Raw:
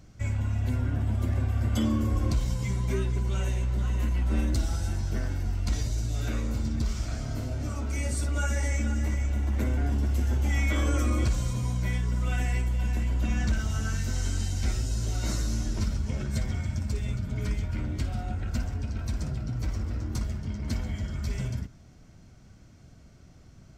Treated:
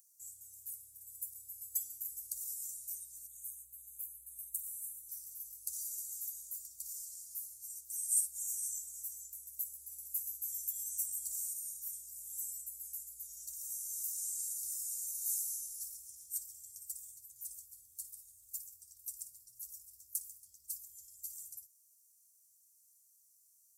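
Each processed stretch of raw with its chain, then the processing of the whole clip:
3.27–5.09 s: Chebyshev band-stop 320–3000 Hz, order 3 + static phaser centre 2.2 kHz, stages 4
whole clip: inverse Chebyshev high-pass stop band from 2.7 kHz, stop band 70 dB; comb 2.1 ms; trim +16.5 dB

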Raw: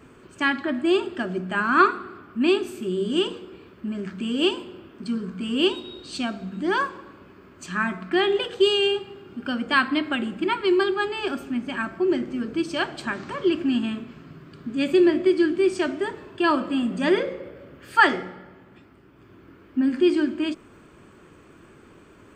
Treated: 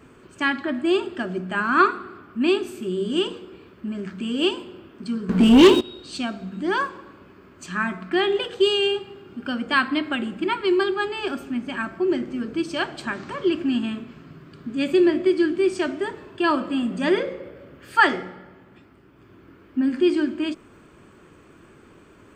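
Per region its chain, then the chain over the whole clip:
5.29–5.81 s: peaking EQ 310 Hz +6.5 dB 2.1 oct + waveshaping leveller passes 3 + AM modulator 200 Hz, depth 10%
whole clip: none

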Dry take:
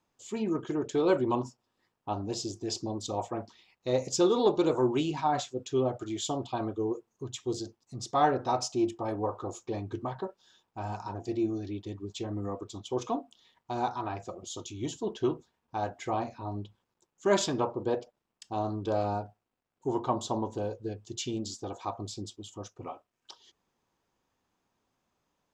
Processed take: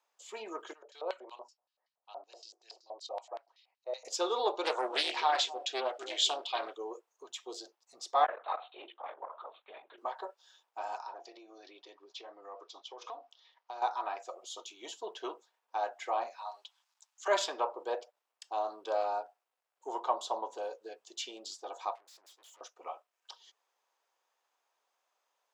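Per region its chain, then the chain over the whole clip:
0.73–4.05 s: band-stop 3.5 kHz, Q 10 + LFO band-pass square 5.3 Hz 640–4000 Hz
4.65–6.77 s: frequency weighting D + bucket-brigade echo 256 ms, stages 1024, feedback 32%, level -9 dB + loudspeaker Doppler distortion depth 0.32 ms
8.24–9.98 s: high-pass 1 kHz 6 dB/octave + LPC vocoder at 8 kHz whisper + transformer saturation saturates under 440 Hz
10.98–13.82 s: elliptic band-pass 120–5400 Hz + bass shelf 170 Hz -10 dB + compression 5:1, threshold -38 dBFS
16.38–17.28 s: high-pass 720 Hz 24 dB/octave + peaking EQ 5.5 kHz +10.5 dB 2.1 oct
21.95–22.61 s: compressor with a negative ratio -45 dBFS + valve stage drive 56 dB, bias 0.35
whole clip: high-pass 540 Hz 24 dB/octave; dynamic bell 6.8 kHz, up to -6 dB, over -56 dBFS, Q 1.5

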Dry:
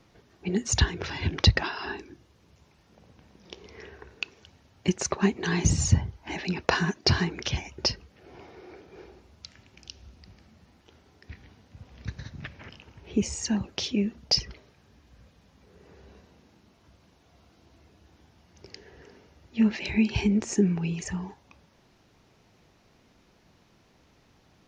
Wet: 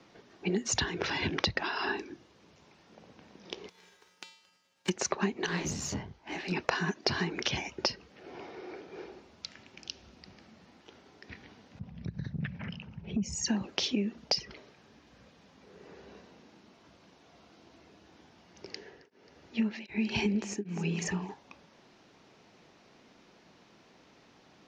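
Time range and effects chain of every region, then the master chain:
3.68–4.88 s: formants flattened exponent 0.3 + feedback comb 180 Hz, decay 0.65 s, harmonics odd, mix 90%
5.46–6.52 s: valve stage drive 24 dB, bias 0.6 + detune thickener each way 53 cents
11.79–13.48 s: resonances exaggerated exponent 1.5 + resonant low shelf 240 Hz +8.5 dB, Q 3 + compression 5:1, threshold -27 dBFS
18.72–21.29 s: two-band feedback delay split 370 Hz, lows 177 ms, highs 268 ms, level -15.5 dB + tremolo of two beating tones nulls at 1.3 Hz
whole clip: three-band isolator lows -16 dB, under 160 Hz, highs -18 dB, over 7.5 kHz; compression 6:1, threshold -30 dBFS; trim +3.5 dB

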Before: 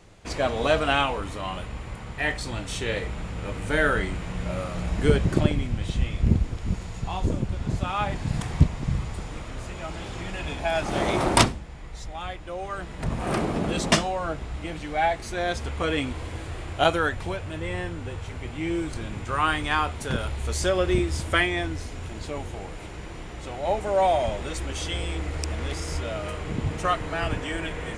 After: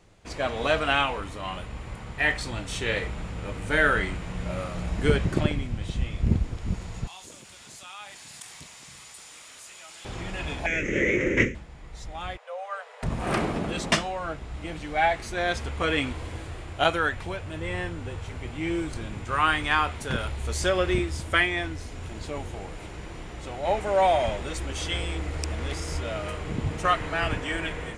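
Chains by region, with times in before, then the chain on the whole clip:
7.07–10.05 s: differentiator + level flattener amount 50%
10.66–11.55 s: CVSD coder 32 kbps + FFT filter 150 Hz 0 dB, 510 Hz +8 dB, 730 Hz -24 dB, 1.2 kHz -17 dB, 2 kHz +11 dB, 3.1 kHz -5 dB, 4.5 kHz -27 dB, 6.5 kHz +7 dB
12.37–13.03 s: brick-wall FIR high-pass 430 Hz + treble shelf 3.2 kHz -9 dB
whole clip: dynamic bell 2 kHz, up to +5 dB, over -36 dBFS, Q 0.71; level rider gain up to 4.5 dB; trim -5.5 dB

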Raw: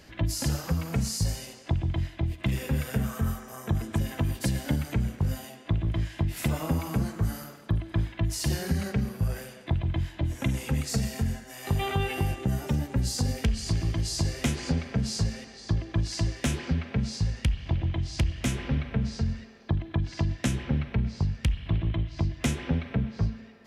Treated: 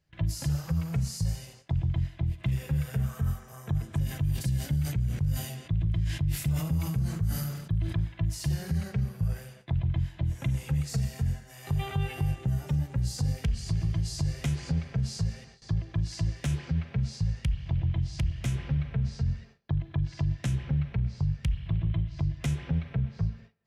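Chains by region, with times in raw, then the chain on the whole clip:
4.04–7.95 s: peaking EQ 900 Hz -7.5 dB 2.6 oct + decay stretcher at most 45 dB/s
whole clip: gate with hold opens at -36 dBFS; resonant low shelf 190 Hz +6.5 dB, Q 3; peak limiter -13 dBFS; trim -6.5 dB

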